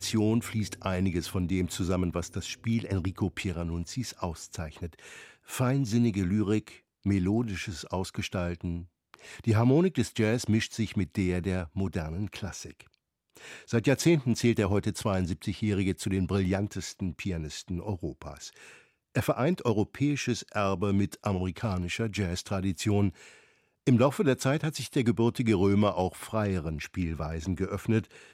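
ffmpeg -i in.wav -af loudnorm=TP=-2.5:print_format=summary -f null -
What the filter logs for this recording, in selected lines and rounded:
Input Integrated:    -29.5 LUFS
Input True Peak:     -11.1 dBTP
Input LRA:             5.0 LU
Input Threshold:     -39.9 LUFS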